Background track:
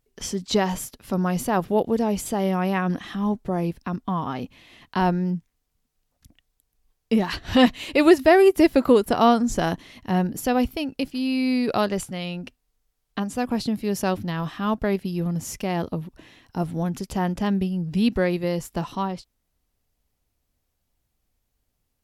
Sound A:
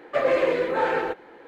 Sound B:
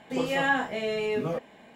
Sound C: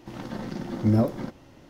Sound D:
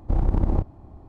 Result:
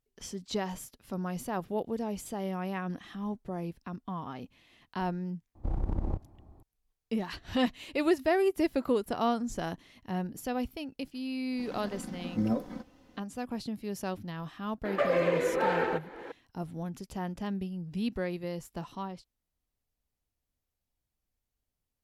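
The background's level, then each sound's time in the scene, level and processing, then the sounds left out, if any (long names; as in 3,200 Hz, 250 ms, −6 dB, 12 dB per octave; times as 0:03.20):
background track −11.5 dB
0:05.55: mix in D −10 dB
0:11.52: mix in C −9.5 dB + comb filter 4 ms
0:14.85: mix in A −5.5 dB + multiband upward and downward compressor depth 70%
not used: B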